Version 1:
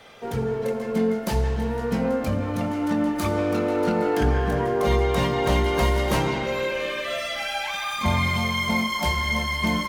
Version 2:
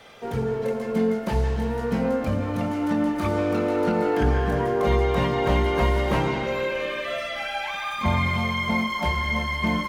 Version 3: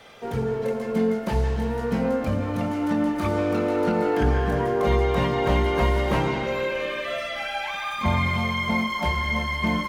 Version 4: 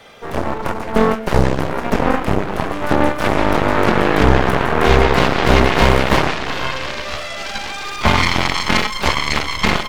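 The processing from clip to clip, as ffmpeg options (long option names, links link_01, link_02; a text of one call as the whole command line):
ffmpeg -i in.wav -filter_complex "[0:a]acrossover=split=3200[link_01][link_02];[link_02]acompressor=threshold=-45dB:ratio=4:attack=1:release=60[link_03];[link_01][link_03]amix=inputs=2:normalize=0" out.wav
ffmpeg -i in.wav -af anull out.wav
ffmpeg -i in.wav -af "aeval=exprs='0.316*(cos(1*acos(clip(val(0)/0.316,-1,1)))-cos(1*PI/2))+0.0562*(cos(6*acos(clip(val(0)/0.316,-1,1)))-cos(6*PI/2))+0.0794*(cos(7*acos(clip(val(0)/0.316,-1,1)))-cos(7*PI/2))':channel_layout=same,volume=7.5dB" out.wav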